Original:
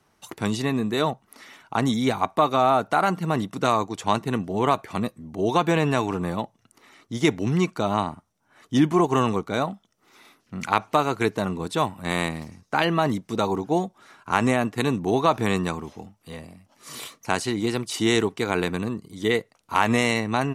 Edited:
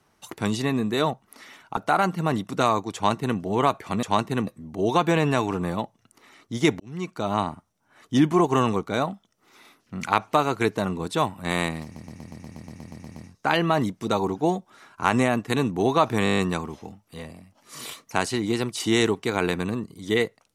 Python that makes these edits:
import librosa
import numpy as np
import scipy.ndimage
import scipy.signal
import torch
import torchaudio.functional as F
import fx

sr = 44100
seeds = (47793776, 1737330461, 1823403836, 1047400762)

y = fx.edit(x, sr, fx.cut(start_s=1.77, length_s=1.04),
    fx.duplicate(start_s=3.99, length_s=0.44, to_s=5.07),
    fx.fade_in_span(start_s=7.4, length_s=0.62),
    fx.stutter(start_s=12.44, slice_s=0.12, count=12),
    fx.stutter(start_s=15.52, slice_s=0.02, count=8), tone=tone)